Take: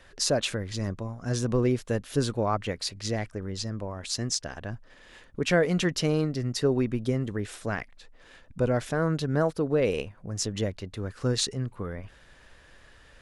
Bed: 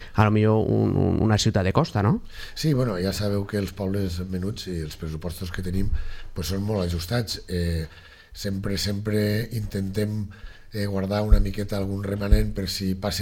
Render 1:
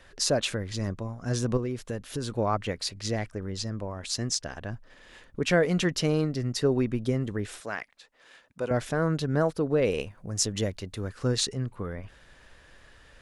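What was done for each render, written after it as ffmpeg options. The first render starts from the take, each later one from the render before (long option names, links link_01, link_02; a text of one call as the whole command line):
ffmpeg -i in.wav -filter_complex "[0:a]asettb=1/sr,asplit=3[link_01][link_02][link_03];[link_01]atrim=end=1.574[link_04];[link_02]atrim=start=1.57:end=2.32,asetpts=PTS-STARTPTS,afade=type=in:duration=0.004:curve=qsin,afade=type=out:start_time=0.746:duration=0.004:curve=qsin,acompressor=threshold=-29dB:ratio=3:attack=3.2:release=140:knee=1:detection=peak[link_05];[link_03]atrim=start=2.316[link_06];[link_04][link_05]acrossfade=duration=0.004:curve1=hsin:curve2=qsin[link_07];[link_07][link_06]acrossfade=duration=0.004:curve1=qsin:curve2=hsin,asettb=1/sr,asplit=3[link_08][link_09][link_10];[link_08]atrim=end=7.604[link_11];[link_09]atrim=start=7.6:end=8.71,asetpts=PTS-STARTPTS,afade=type=in:duration=0.004:curve=qsin,afade=type=out:start_time=1.106:duration=0.004:curve=qsin,highpass=frequency=640:poles=1[link_12];[link_10]atrim=start=8.706[link_13];[link_11][link_12]acrossfade=duration=0.004:curve1=hsin:curve2=qsin[link_14];[link_14][link_13]acrossfade=duration=0.004:curve1=qsin:curve2=hsin,asettb=1/sr,asplit=3[link_15][link_16][link_17];[link_15]atrim=end=10.004[link_18];[link_16]atrim=start=10:end=11.1,asetpts=PTS-STARTPTS,afade=type=in:duration=0.004:curve=qsin,afade=type=out:start_time=1.096:duration=0.004:curve=qsin,highshelf=frequency=5400:gain=8[link_19];[link_17]atrim=start=11.096[link_20];[link_18][link_19]acrossfade=duration=0.004:curve1=hsin:curve2=qsin[link_21];[link_21][link_20]acrossfade=duration=0.004:curve1=qsin:curve2=hsin" out.wav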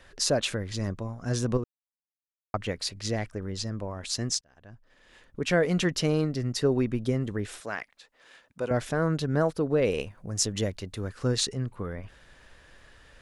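ffmpeg -i in.wav -filter_complex "[0:a]asplit=4[link_01][link_02][link_03][link_04];[link_01]atrim=end=1.64,asetpts=PTS-STARTPTS,afade=type=out:start_time=1.636:duration=0.004:curve=hsin[link_05];[link_02]atrim=start=1.64:end=2.54,asetpts=PTS-STARTPTS,volume=0[link_06];[link_03]atrim=start=2.54:end=4.41,asetpts=PTS-STARTPTS,afade=type=in:duration=0.004:curve=hsin,afade=type=out:start_time=1.866:duration=0.004:curve=hsin[link_07];[link_04]atrim=start=4.41,asetpts=PTS-STARTPTS,afade=type=in:duration=1.31[link_08];[link_05][link_06][link_07][link_08]concat=n=4:v=0:a=1" out.wav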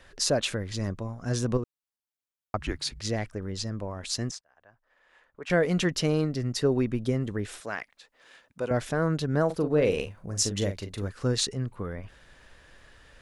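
ffmpeg -i in.wav -filter_complex "[0:a]asettb=1/sr,asplit=3[link_01][link_02][link_03];[link_01]atrim=end=2.594[link_04];[link_02]atrim=start=2.59:end=3,asetpts=PTS-STARTPTS,afade=type=in:duration=0.004:curve=qsin,afade=type=out:start_time=0.406:duration=0.004:curve=qsin,afreqshift=-160[link_05];[link_03]atrim=start=2.996[link_06];[link_04][link_05]acrossfade=duration=0.004:curve1=hsin:curve2=qsin[link_07];[link_07][link_06]acrossfade=duration=0.004:curve1=qsin:curve2=hsin,asettb=1/sr,asplit=3[link_08][link_09][link_10];[link_08]atrim=end=4.314[link_11];[link_09]atrim=start=4.31:end=5.5,asetpts=PTS-STARTPTS,afade=type=in:duration=0.004:curve=qsin,afade=type=out:start_time=1.186:duration=0.004:curve=qsin,acrossover=split=540 2100:gain=0.126 1 0.224[link_12][link_13][link_14];[link_12][link_13][link_14]amix=inputs=3:normalize=0[link_15];[link_10]atrim=start=5.496[link_16];[link_11][link_15]acrossfade=duration=0.004:curve1=hsin:curve2=qsin[link_17];[link_17][link_16]acrossfade=duration=0.004:curve1=qsin:curve2=hsin,asettb=1/sr,asplit=3[link_18][link_19][link_20];[link_18]atrim=end=9.464[link_21];[link_19]atrim=start=9.46:end=11.08,asetpts=PTS-STARTPTS,afade=type=in:duration=0.004:curve=qsin,afade=type=out:start_time=1.616:duration=0.004:curve=qsin,asplit=2[link_22][link_23];[link_23]adelay=40,volume=-8dB[link_24];[link_22][link_24]amix=inputs=2:normalize=0,atrim=end_sample=71442[link_25];[link_20]atrim=start=11.076[link_26];[link_21][link_25]acrossfade=duration=0.004:curve1=hsin:curve2=qsin[link_27];[link_27][link_26]acrossfade=duration=0.004:curve1=qsin:curve2=hsin" out.wav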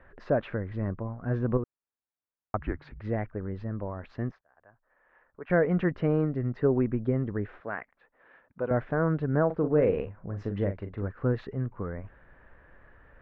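ffmpeg -i in.wav -af "lowpass=frequency=1800:width=0.5412,lowpass=frequency=1800:width=1.3066" out.wav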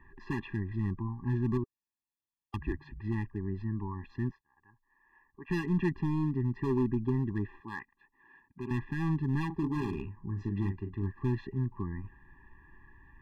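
ffmpeg -i in.wav -af "volume=23.5dB,asoftclip=hard,volume=-23.5dB,afftfilt=real='re*eq(mod(floor(b*sr/1024/400),2),0)':imag='im*eq(mod(floor(b*sr/1024/400),2),0)':win_size=1024:overlap=0.75" out.wav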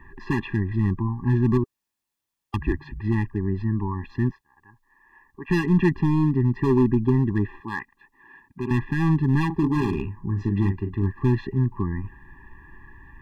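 ffmpeg -i in.wav -af "volume=10dB" out.wav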